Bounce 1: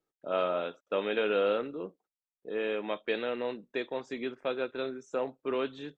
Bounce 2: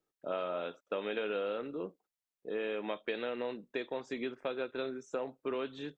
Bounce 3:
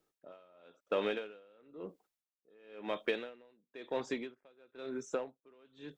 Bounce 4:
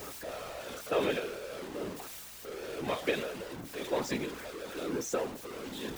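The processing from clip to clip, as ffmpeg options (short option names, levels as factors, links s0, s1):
-af "acompressor=threshold=0.0251:ratio=6"
-filter_complex "[0:a]asplit=2[s0][s1];[s1]asoftclip=type=tanh:threshold=0.0106,volume=0.398[s2];[s0][s2]amix=inputs=2:normalize=0,aeval=exprs='val(0)*pow(10,-32*(0.5-0.5*cos(2*PI*0.99*n/s))/20)':c=same,volume=1.5"
-af "aeval=exprs='val(0)+0.5*0.0112*sgn(val(0))':c=same,afftfilt=real='hypot(re,im)*cos(2*PI*random(0))':imag='hypot(re,im)*sin(2*PI*random(1))':win_size=512:overlap=0.75,aeval=exprs='val(0)+0.000224*(sin(2*PI*60*n/s)+sin(2*PI*2*60*n/s)/2+sin(2*PI*3*60*n/s)/3+sin(2*PI*4*60*n/s)/4+sin(2*PI*5*60*n/s)/5)':c=same,volume=2.66"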